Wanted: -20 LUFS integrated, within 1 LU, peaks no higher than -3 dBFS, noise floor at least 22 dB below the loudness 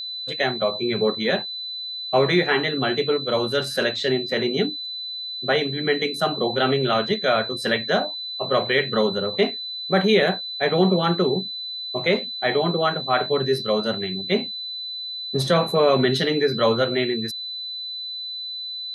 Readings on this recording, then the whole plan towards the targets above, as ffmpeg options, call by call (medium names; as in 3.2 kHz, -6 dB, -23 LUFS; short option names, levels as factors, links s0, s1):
steady tone 4 kHz; tone level -29 dBFS; loudness -22.5 LUFS; peak level -6.5 dBFS; loudness target -20.0 LUFS
-> -af "bandreject=f=4000:w=30"
-af "volume=1.33"